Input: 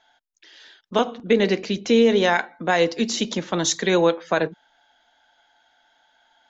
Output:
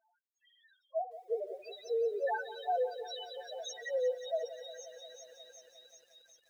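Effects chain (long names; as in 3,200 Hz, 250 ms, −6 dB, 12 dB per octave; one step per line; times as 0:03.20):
inverse Chebyshev high-pass filter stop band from 260 Hz, stop band 40 dB
delay with a high-pass on its return 377 ms, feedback 76%, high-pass 3,700 Hz, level −3.5 dB
spectral peaks only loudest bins 1
feedback echo at a low word length 177 ms, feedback 80%, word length 10 bits, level −14.5 dB
level −2.5 dB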